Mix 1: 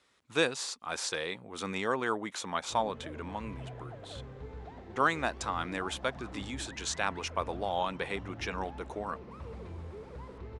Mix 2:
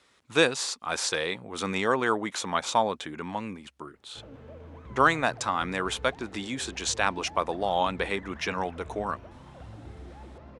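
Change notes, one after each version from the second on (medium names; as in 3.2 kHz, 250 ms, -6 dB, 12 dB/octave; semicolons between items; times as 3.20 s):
speech +6.0 dB; background: entry +1.45 s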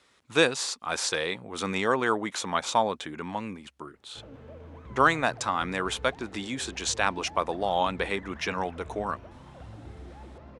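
no change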